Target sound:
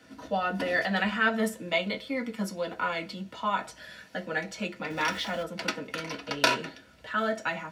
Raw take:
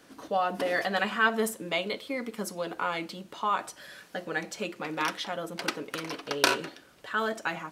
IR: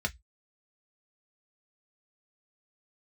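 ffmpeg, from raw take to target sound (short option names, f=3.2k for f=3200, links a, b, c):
-filter_complex "[0:a]asettb=1/sr,asplit=3[a][b][c];[a]atrim=end=4.904[d];[b]atrim=start=4.9:end=5.43,asetpts=PTS-STARTPTS,afade=t=in:d=0.004:c=qsin,afade=t=out:st=0.526:d=0.004:c=qsin,aeval=exprs='val(0)+0.5*0.0133*sgn(val(0))':c=same[e];[c]atrim=start=5.426[f];[d][e]acrossfade=d=0.004:c1=hsin:c2=qsin[g];[g][f]acrossfade=d=0.004:c1=qsin:c2=hsin[h];[1:a]atrim=start_sample=2205[i];[h][i]afir=irnorm=-1:irlink=0,volume=-4.5dB"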